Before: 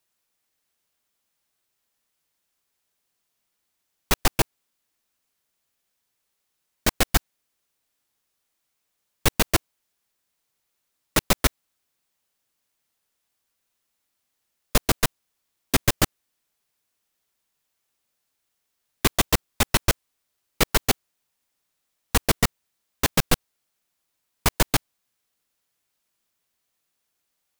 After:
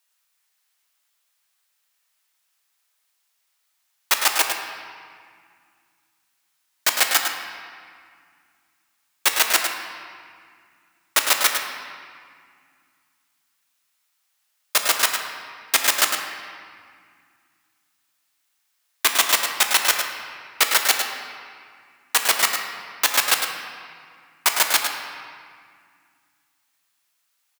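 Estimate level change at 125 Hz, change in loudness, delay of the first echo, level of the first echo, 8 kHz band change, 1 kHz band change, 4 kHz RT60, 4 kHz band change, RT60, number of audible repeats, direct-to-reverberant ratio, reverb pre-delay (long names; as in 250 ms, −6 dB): below −25 dB, +4.0 dB, 105 ms, −7.0 dB, +6.5 dB, +4.0 dB, 1.5 s, +6.5 dB, 2.0 s, 1, 2.0 dB, 3 ms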